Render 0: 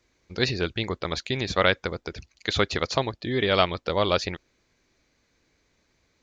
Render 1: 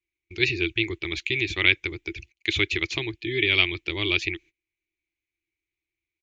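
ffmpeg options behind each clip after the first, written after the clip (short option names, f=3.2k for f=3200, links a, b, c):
-af "agate=range=-23dB:threshold=-49dB:ratio=16:detection=peak,firequalizer=gain_entry='entry(110,0);entry(230,-19);entry(330,9);entry(510,-20);entry(860,-13);entry(1400,-12);entry(2300,13);entry(4600,-6);entry(6800,-1)':delay=0.05:min_phase=1,volume=-1dB"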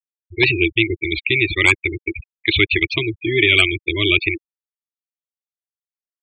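-af "aeval=exprs='0.841*sin(PI/2*2.51*val(0)/0.841)':c=same,afftfilt=real='re*gte(hypot(re,im),0.224)':imag='im*gte(hypot(re,im),0.224)':win_size=1024:overlap=0.75,volume=-2.5dB"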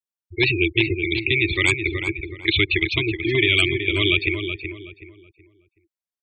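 -filter_complex "[0:a]acrossover=split=300|3000[a][b][c];[b]acompressor=threshold=-18dB:ratio=6[d];[a][d][c]amix=inputs=3:normalize=0,asplit=2[e][f];[f]adelay=374,lowpass=f=2.2k:p=1,volume=-6.5dB,asplit=2[g][h];[h]adelay=374,lowpass=f=2.2k:p=1,volume=0.32,asplit=2[i][j];[j]adelay=374,lowpass=f=2.2k:p=1,volume=0.32,asplit=2[k][l];[l]adelay=374,lowpass=f=2.2k:p=1,volume=0.32[m];[g][i][k][m]amix=inputs=4:normalize=0[n];[e][n]amix=inputs=2:normalize=0,volume=-1.5dB"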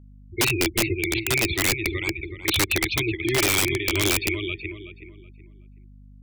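-af "aeval=exprs='val(0)+0.00631*(sin(2*PI*50*n/s)+sin(2*PI*2*50*n/s)/2+sin(2*PI*3*50*n/s)/3+sin(2*PI*4*50*n/s)/4+sin(2*PI*5*50*n/s)/5)':c=same,aeval=exprs='(mod(3.76*val(0)+1,2)-1)/3.76':c=same,volume=-2dB"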